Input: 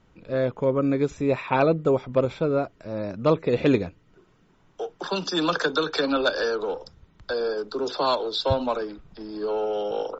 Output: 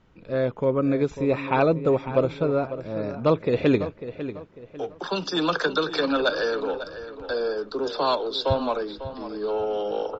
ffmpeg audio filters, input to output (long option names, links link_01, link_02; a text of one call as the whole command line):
ffmpeg -i in.wav -filter_complex "[0:a]lowpass=5800,asplit=2[link_01][link_02];[link_02]adelay=547,lowpass=frequency=3700:poles=1,volume=-12dB,asplit=2[link_03][link_04];[link_04]adelay=547,lowpass=frequency=3700:poles=1,volume=0.36,asplit=2[link_05][link_06];[link_06]adelay=547,lowpass=frequency=3700:poles=1,volume=0.36,asplit=2[link_07][link_08];[link_08]adelay=547,lowpass=frequency=3700:poles=1,volume=0.36[link_09];[link_01][link_03][link_05][link_07][link_09]amix=inputs=5:normalize=0" out.wav